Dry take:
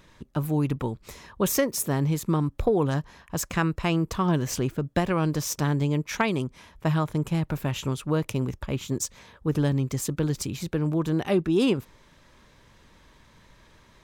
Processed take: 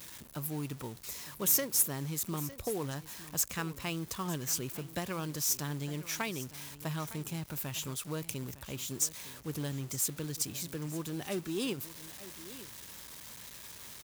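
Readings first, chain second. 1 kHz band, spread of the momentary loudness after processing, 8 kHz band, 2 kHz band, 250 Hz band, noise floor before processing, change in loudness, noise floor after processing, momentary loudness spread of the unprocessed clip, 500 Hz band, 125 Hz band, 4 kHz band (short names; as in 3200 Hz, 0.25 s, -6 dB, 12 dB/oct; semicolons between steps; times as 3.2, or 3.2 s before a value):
-12.0 dB, 14 LU, +1.0 dB, -8.5 dB, -13.0 dB, -57 dBFS, -8.0 dB, -51 dBFS, 7 LU, -13.0 dB, -13.0 dB, -3.5 dB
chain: zero-crossing step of -37 dBFS; HPF 64 Hz 12 dB/oct; pre-emphasis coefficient 0.8; short-mantissa float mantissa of 2-bit; on a send: echo 0.907 s -16 dB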